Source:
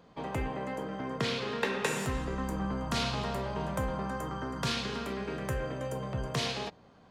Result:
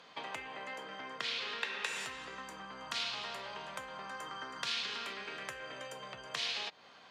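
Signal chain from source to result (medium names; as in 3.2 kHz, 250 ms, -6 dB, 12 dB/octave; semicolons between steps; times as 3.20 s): compression 6:1, threshold -42 dBFS, peak gain reduction 16 dB; band-pass filter 3.2 kHz, Q 0.88; trim +12.5 dB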